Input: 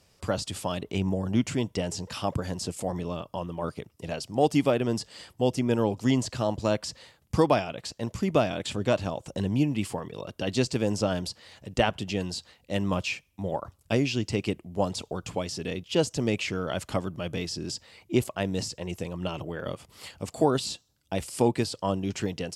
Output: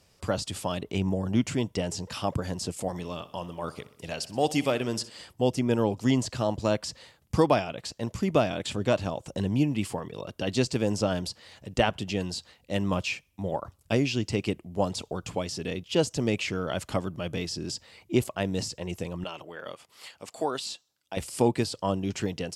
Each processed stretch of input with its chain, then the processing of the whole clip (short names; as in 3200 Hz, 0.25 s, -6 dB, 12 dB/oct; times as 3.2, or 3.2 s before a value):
2.88–5.1 tilt shelf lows -4 dB, about 1300 Hz + feedback echo 62 ms, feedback 58%, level -17 dB
19.24–21.17 HPF 880 Hz 6 dB/oct + high shelf 5200 Hz -4.5 dB
whole clip: dry